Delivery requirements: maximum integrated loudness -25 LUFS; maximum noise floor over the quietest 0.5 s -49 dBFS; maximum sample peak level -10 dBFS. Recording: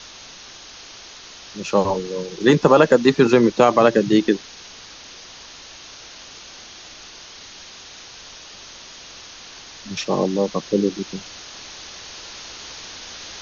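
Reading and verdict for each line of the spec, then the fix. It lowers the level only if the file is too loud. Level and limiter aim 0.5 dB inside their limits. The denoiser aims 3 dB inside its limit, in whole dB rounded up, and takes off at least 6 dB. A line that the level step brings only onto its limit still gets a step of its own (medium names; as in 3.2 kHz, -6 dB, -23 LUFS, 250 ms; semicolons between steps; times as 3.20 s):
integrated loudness -18.0 LUFS: fail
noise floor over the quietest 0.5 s -41 dBFS: fail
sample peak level -2.0 dBFS: fail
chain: noise reduction 6 dB, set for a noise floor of -41 dBFS; trim -7.5 dB; peak limiter -10.5 dBFS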